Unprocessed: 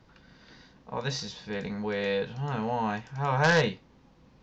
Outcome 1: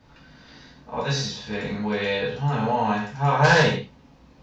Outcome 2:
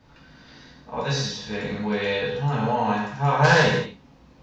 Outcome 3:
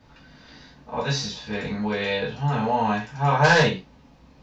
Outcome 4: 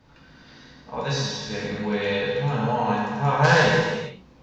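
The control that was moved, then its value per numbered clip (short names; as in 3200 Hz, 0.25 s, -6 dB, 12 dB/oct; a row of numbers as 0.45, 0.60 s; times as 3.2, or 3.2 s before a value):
non-linear reverb, gate: 0.18, 0.27, 0.11, 0.51 s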